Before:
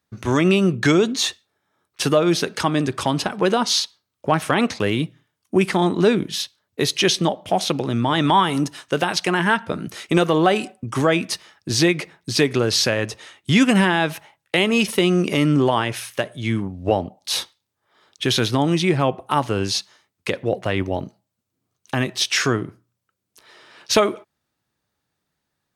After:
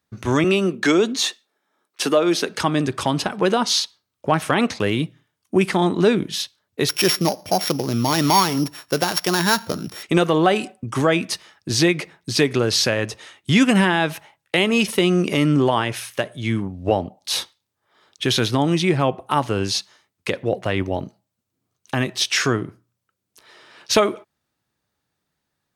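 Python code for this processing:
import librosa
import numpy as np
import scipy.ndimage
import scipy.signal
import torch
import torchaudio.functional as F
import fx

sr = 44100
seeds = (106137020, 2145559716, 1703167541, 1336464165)

y = fx.highpass(x, sr, hz=210.0, slope=24, at=(0.44, 2.49))
y = fx.sample_sort(y, sr, block=8, at=(6.89, 10.03))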